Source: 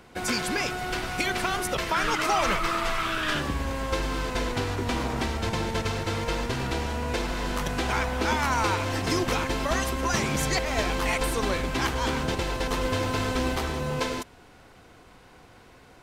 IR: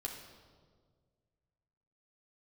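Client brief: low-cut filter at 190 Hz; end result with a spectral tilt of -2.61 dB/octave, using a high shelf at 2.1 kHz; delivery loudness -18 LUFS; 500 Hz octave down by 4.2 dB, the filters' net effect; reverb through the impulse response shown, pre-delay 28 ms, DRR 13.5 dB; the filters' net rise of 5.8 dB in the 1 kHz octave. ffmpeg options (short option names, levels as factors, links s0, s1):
-filter_complex "[0:a]highpass=190,equalizer=f=500:t=o:g=-8,equalizer=f=1000:t=o:g=7,highshelf=f=2100:g=8.5,asplit=2[s0][s1];[1:a]atrim=start_sample=2205,adelay=28[s2];[s1][s2]afir=irnorm=-1:irlink=0,volume=0.224[s3];[s0][s3]amix=inputs=2:normalize=0,volume=1.78"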